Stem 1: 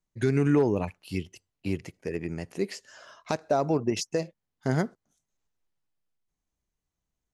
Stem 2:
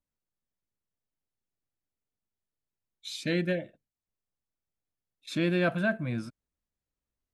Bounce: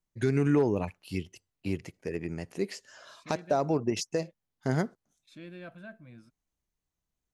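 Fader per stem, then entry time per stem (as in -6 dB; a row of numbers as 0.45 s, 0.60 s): -2.0 dB, -18.5 dB; 0.00 s, 0.00 s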